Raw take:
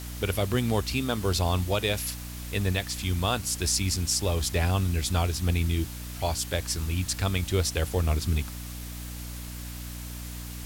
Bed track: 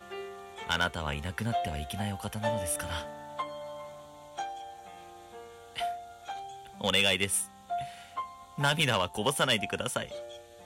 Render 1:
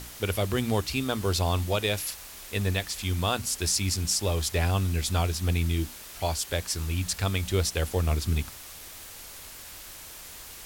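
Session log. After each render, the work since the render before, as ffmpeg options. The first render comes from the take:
-af "bandreject=f=60:t=h:w=6,bandreject=f=120:t=h:w=6,bandreject=f=180:t=h:w=6,bandreject=f=240:t=h:w=6,bandreject=f=300:t=h:w=6"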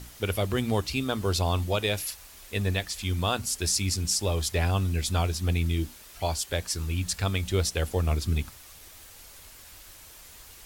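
-af "afftdn=nr=6:nf=-44"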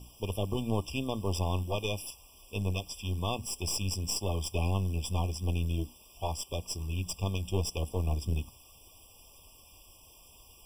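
-af "aeval=exprs='(tanh(10*val(0)+0.8)-tanh(0.8))/10':c=same,afftfilt=real='re*eq(mod(floor(b*sr/1024/1200),2),0)':imag='im*eq(mod(floor(b*sr/1024/1200),2),0)':win_size=1024:overlap=0.75"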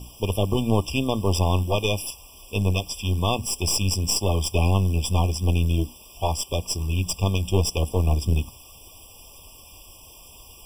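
-af "volume=9.5dB"

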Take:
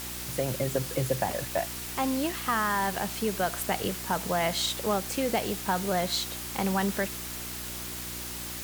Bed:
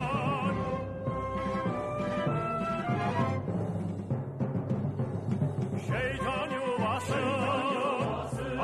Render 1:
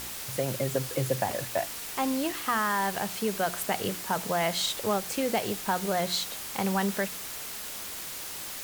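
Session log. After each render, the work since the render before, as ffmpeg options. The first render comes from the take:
-af "bandreject=f=60:t=h:w=4,bandreject=f=120:t=h:w=4,bandreject=f=180:t=h:w=4,bandreject=f=240:t=h:w=4,bandreject=f=300:t=h:w=4,bandreject=f=360:t=h:w=4"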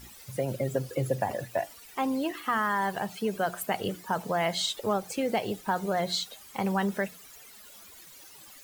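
-af "afftdn=nr=16:nf=-38"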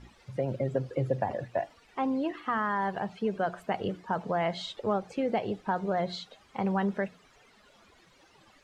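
-af "lowpass=4.6k,highshelf=f=2.2k:g=-9.5"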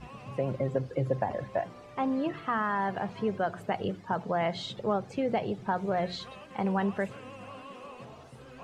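-filter_complex "[1:a]volume=-16dB[a];[0:a][a]amix=inputs=2:normalize=0"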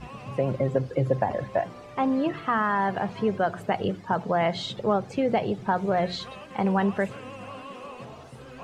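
-af "volume=5dB"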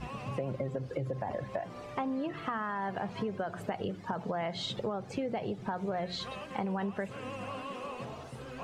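-af "alimiter=limit=-16.5dB:level=0:latency=1:release=59,acompressor=threshold=-32dB:ratio=5"

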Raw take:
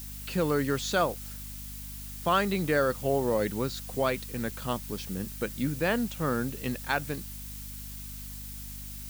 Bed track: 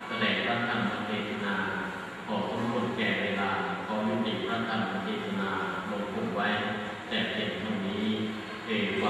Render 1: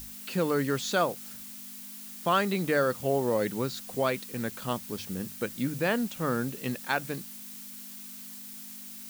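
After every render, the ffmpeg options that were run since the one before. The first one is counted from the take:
-af "bandreject=f=50:t=h:w=6,bandreject=f=100:t=h:w=6,bandreject=f=150:t=h:w=6"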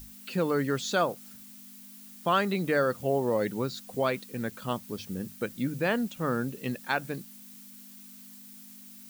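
-af "afftdn=nr=7:nf=-44"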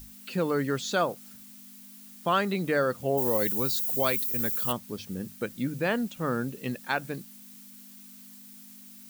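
-filter_complex "[0:a]asplit=3[a][b][c];[a]afade=t=out:st=3.17:d=0.02[d];[b]aemphasis=mode=production:type=75fm,afade=t=in:st=3.17:d=0.02,afade=t=out:st=4.71:d=0.02[e];[c]afade=t=in:st=4.71:d=0.02[f];[d][e][f]amix=inputs=3:normalize=0"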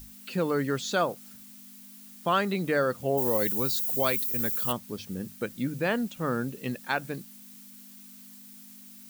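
-af anull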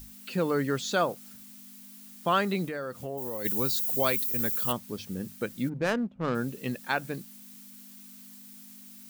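-filter_complex "[0:a]asplit=3[a][b][c];[a]afade=t=out:st=2.65:d=0.02[d];[b]acompressor=threshold=-34dB:ratio=3:attack=3.2:release=140:knee=1:detection=peak,afade=t=in:st=2.65:d=0.02,afade=t=out:st=3.44:d=0.02[e];[c]afade=t=in:st=3.44:d=0.02[f];[d][e][f]amix=inputs=3:normalize=0,asplit=3[g][h][i];[g]afade=t=out:st=5.68:d=0.02[j];[h]adynamicsmooth=sensitivity=3:basefreq=540,afade=t=in:st=5.68:d=0.02,afade=t=out:st=6.34:d=0.02[k];[i]afade=t=in:st=6.34:d=0.02[l];[j][k][l]amix=inputs=3:normalize=0"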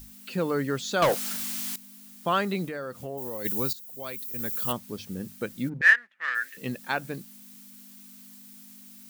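-filter_complex "[0:a]asettb=1/sr,asplit=3[a][b][c];[a]atrim=end=1.024[d];[b]atrim=start=1.02:end=1.76,asetpts=PTS-STARTPTS,afade=t=in:d=0.004:c=qsin,afade=t=out:st=0.736:d=0.004:c=qsin,asplit=2[e][f];[f]highpass=f=720:p=1,volume=28dB,asoftclip=type=tanh:threshold=-13.5dB[g];[e][g]amix=inputs=2:normalize=0,lowpass=f=7.9k:p=1,volume=-6dB[h];[c]atrim=start=1.756[i];[d][h]acrossfade=d=0.004:c1=hsin:c2=qsin[j];[j][i]acrossfade=d=0.004:c1=qsin:c2=hsin,asettb=1/sr,asplit=3[k][l][m];[k]atrim=end=5.814[n];[l]atrim=start=5.81:end=6.57,asetpts=PTS-STARTPTS,afade=t=in:d=0.004:c=qsin,afade=t=out:st=0.756:d=0.004:c=qsin,highpass=f=1.8k:t=q:w=15[o];[m]atrim=start=6.566[p];[n][o]acrossfade=d=0.004:c1=hsin:c2=qsin[q];[q][p]acrossfade=d=0.004:c1=qsin:c2=hsin,asplit=2[r][s];[r]atrim=end=3.73,asetpts=PTS-STARTPTS,afade=t=out:st=3.726:d=0.004:c=hsin:silence=0.158489[t];[s]atrim=start=3.73,asetpts=PTS-STARTPTS,afade=t=in:d=0.91:c=qua:silence=0.158489[u];[t][u]concat=n=2:v=0:a=1"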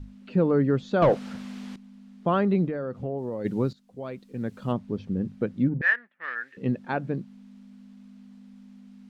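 -af "lowpass=3.4k,tiltshelf=f=890:g=8.5"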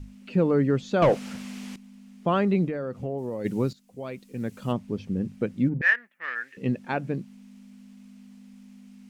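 -af "aexciter=amount=1.5:drive=6.6:freq=2.1k"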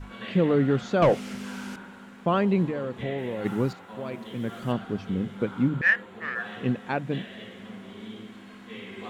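-filter_complex "[1:a]volume=-11.5dB[a];[0:a][a]amix=inputs=2:normalize=0"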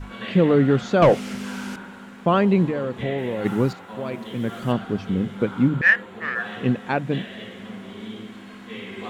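-af "volume=5dB"

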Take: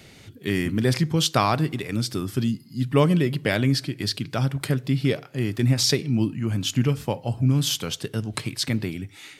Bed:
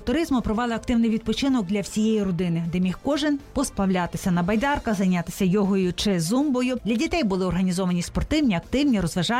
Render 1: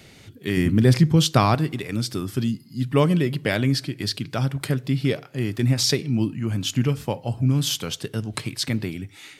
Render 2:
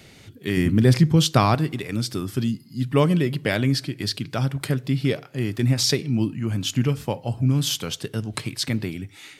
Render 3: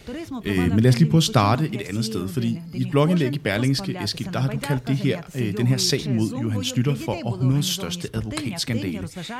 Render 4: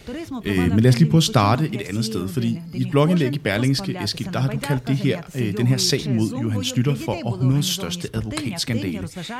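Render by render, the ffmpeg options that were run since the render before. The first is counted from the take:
-filter_complex "[0:a]asettb=1/sr,asplit=3[a][b][c];[a]atrim=end=0.574[d];[b]atrim=start=0.57:end=1.55,asetpts=PTS-STARTPTS,afade=t=in:d=0.004:c=qsin,afade=t=out:st=0.976:d=0.004:c=qsin,lowshelf=f=320:g=8[e];[c]atrim=start=1.546[f];[d][e]acrossfade=d=0.004:c1=hsin:c2=qsin[g];[g][f]acrossfade=d=0.004:c1=qsin:c2=hsin"
-af anull
-filter_complex "[1:a]volume=-10dB[a];[0:a][a]amix=inputs=2:normalize=0"
-af "volume=1.5dB,alimiter=limit=-3dB:level=0:latency=1"

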